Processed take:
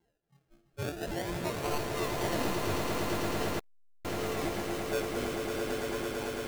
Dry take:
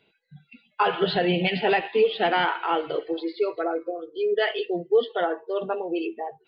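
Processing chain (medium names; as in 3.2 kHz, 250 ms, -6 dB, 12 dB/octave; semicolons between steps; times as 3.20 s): partials quantised in pitch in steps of 4 st; decimation with a swept rate 36×, swing 60% 0.43 Hz; feedback comb 340 Hz, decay 0.3 s, harmonics all, mix 60%; on a send: echo with a slow build-up 111 ms, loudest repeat 8, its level -6.5 dB; 3.59–4.05 s: on the sum: transformer saturation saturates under 600 Hz; trim -8.5 dB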